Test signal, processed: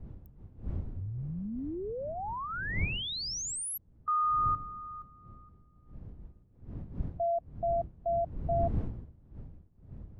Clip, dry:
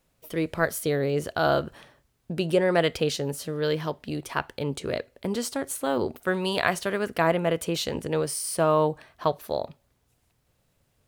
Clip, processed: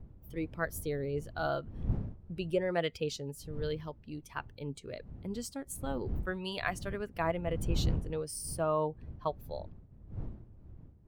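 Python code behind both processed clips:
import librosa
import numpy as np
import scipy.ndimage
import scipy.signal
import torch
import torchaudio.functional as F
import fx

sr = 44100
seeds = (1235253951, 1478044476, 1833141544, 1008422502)

y = fx.bin_expand(x, sr, power=1.5)
y = fx.dmg_wind(y, sr, seeds[0], corner_hz=110.0, level_db=-33.0)
y = y * 10.0 ** (-7.5 / 20.0)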